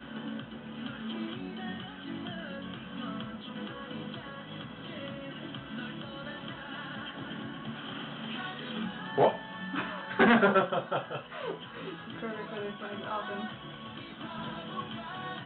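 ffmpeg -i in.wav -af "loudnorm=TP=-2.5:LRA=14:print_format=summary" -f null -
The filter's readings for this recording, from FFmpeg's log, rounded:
Input Integrated:    -35.1 LUFS
Input True Peak:     -11.7 dBTP
Input LRA:            11.5 LU
Input Threshold:     -45.1 LUFS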